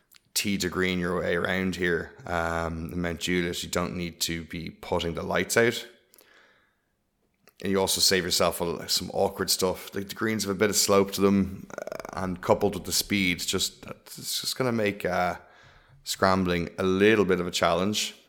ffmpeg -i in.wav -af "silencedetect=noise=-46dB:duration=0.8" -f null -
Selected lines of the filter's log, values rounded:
silence_start: 6.37
silence_end: 7.48 | silence_duration: 1.10